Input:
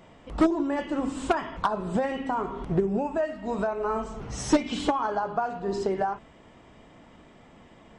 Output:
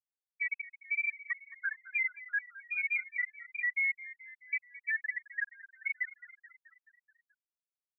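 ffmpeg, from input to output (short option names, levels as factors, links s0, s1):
-filter_complex "[0:a]afftfilt=real='re*pow(10,8/40*sin(2*PI*(0.63*log(max(b,1)*sr/1024/100)/log(2)-(-1.3)*(pts-256)/sr)))':imag='im*pow(10,8/40*sin(2*PI*(0.63*log(max(b,1)*sr/1024/100)/log(2)-(-1.3)*(pts-256)/sr)))':win_size=1024:overlap=0.75,aemphasis=mode=reproduction:type=cd,afftfilt=real='re*gte(hypot(re,im),0.562)':imag='im*gte(hypot(re,im),0.562)':win_size=1024:overlap=0.75,highpass=130,areverse,acompressor=threshold=0.0282:ratio=10,areverse,alimiter=level_in=2.11:limit=0.0631:level=0:latency=1:release=78,volume=0.473,asplit=7[s0][s1][s2][s3][s4][s5][s6];[s1]adelay=215,afreqshift=54,volume=0.141[s7];[s2]adelay=430,afreqshift=108,volume=0.0851[s8];[s3]adelay=645,afreqshift=162,volume=0.0507[s9];[s4]adelay=860,afreqshift=216,volume=0.0305[s10];[s5]adelay=1075,afreqshift=270,volume=0.0184[s11];[s6]adelay=1290,afreqshift=324,volume=0.011[s12];[s0][s7][s8][s9][s10][s11][s12]amix=inputs=7:normalize=0,lowpass=f=2200:t=q:w=0.5098,lowpass=f=2200:t=q:w=0.6013,lowpass=f=2200:t=q:w=0.9,lowpass=f=2200:t=q:w=2.563,afreqshift=-2600,volume=1.78"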